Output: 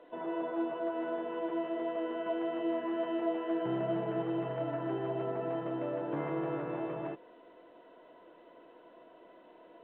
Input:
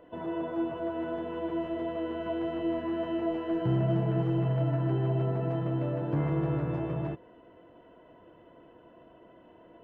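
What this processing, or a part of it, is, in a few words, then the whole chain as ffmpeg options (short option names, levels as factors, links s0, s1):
telephone: -af "highpass=340,lowpass=3100" -ar 8000 -c:a pcm_alaw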